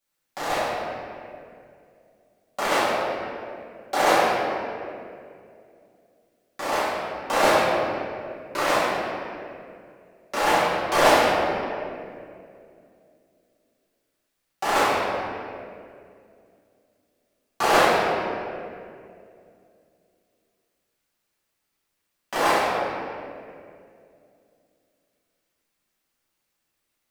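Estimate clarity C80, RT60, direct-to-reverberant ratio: −1.0 dB, 2.4 s, −12.0 dB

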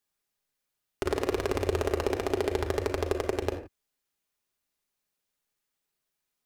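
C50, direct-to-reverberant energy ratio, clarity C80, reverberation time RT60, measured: 8.0 dB, 2.0 dB, 11.5 dB, non-exponential decay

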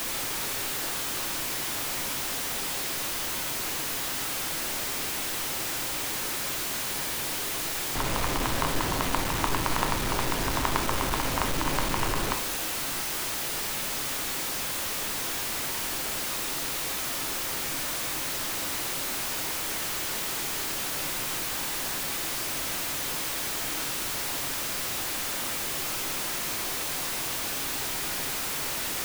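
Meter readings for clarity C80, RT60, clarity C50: 13.0 dB, 0.80 s, 10.5 dB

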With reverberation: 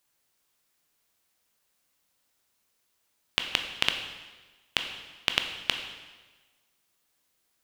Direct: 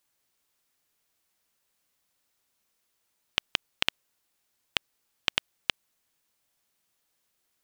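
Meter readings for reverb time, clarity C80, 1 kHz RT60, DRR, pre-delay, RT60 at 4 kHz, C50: 1.3 s, 8.5 dB, 1.3 s, 5.0 dB, 7 ms, 1.2 s, 7.5 dB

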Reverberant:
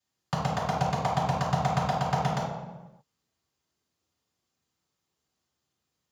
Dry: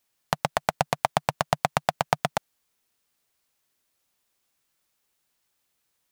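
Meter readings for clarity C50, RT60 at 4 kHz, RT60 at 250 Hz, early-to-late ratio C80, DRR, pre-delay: 0.0 dB, 0.80 s, can't be measured, 3.5 dB, −9.5 dB, 3 ms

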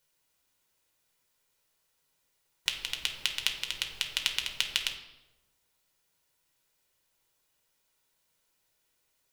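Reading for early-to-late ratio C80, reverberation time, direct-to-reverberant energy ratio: 10.5 dB, 1.1 s, 3.5 dB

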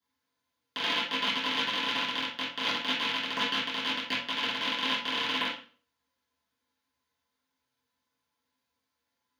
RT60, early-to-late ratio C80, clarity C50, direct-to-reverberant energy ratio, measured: 0.40 s, 8.0 dB, 4.0 dB, −12.5 dB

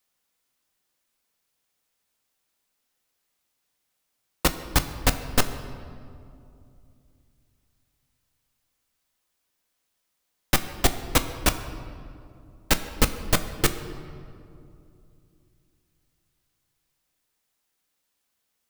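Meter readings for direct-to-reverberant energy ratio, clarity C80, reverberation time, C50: 8.0 dB, 12.0 dB, 2.6 s, 11.0 dB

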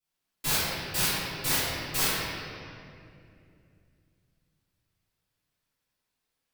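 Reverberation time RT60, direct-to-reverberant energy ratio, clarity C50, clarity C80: 2.5 s, −19.5 dB, −4.5 dB, −2.0 dB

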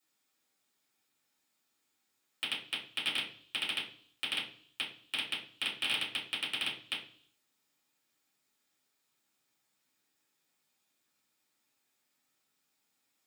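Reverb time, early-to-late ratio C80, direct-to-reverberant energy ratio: 0.55 s, 13.0 dB, −6.5 dB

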